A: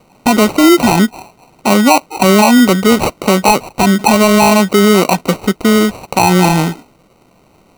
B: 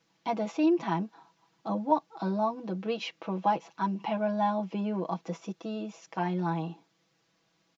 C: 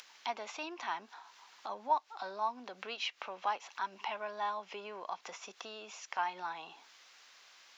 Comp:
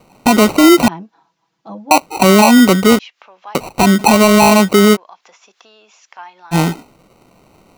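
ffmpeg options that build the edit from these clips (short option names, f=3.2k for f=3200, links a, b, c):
-filter_complex "[2:a]asplit=2[a][b];[0:a]asplit=4[c][d][e][f];[c]atrim=end=0.882[g];[1:a]atrim=start=0.878:end=1.912[h];[d]atrim=start=1.908:end=2.992[i];[a]atrim=start=2.988:end=3.552[j];[e]atrim=start=3.548:end=4.97[k];[b]atrim=start=4.93:end=6.55[l];[f]atrim=start=6.51[m];[g][h]acrossfade=d=0.004:c1=hsin:c2=hsin[n];[n][i]acrossfade=d=0.004:c1=hsin:c2=hsin[o];[o][j]acrossfade=d=0.004:c1=hsin:c2=hsin[p];[p][k]acrossfade=d=0.004:c1=hsin:c2=hsin[q];[q][l]acrossfade=d=0.04:c1=tri:c2=tri[r];[r][m]acrossfade=d=0.04:c1=tri:c2=tri"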